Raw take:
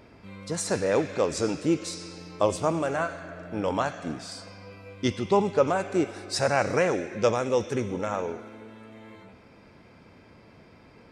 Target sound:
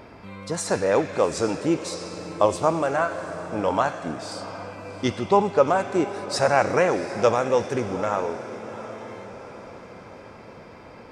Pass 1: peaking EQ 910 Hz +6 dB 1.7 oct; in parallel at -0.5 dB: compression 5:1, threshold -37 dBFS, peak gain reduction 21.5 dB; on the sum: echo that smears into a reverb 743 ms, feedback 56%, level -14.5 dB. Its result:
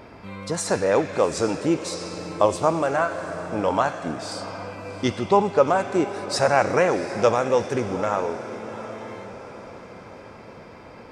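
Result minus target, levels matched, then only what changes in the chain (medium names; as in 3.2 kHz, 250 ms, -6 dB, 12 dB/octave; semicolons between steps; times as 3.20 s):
compression: peak gain reduction -9 dB
change: compression 5:1, threshold -48.5 dBFS, peak gain reduction 31 dB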